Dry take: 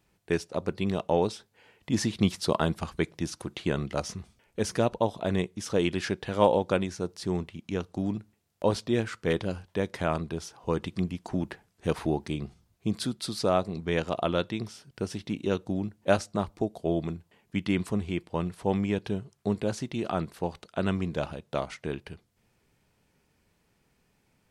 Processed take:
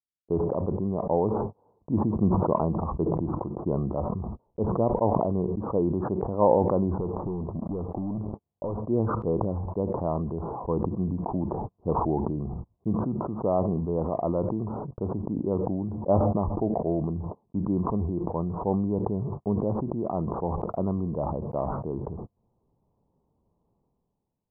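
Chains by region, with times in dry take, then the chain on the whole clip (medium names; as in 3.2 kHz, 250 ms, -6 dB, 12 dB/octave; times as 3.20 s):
6.97–8.85 s: compression 16:1, threshold -33 dBFS + waveshaping leveller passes 3
whole clip: gate -51 dBFS, range -41 dB; steep low-pass 1.1 kHz 72 dB/octave; decay stretcher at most 22 dB/s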